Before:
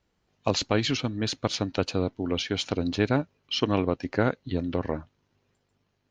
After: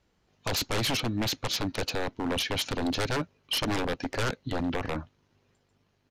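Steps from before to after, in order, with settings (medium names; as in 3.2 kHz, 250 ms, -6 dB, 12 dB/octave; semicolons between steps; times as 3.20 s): wavefolder -25.5 dBFS; resampled via 32 kHz; trim +3 dB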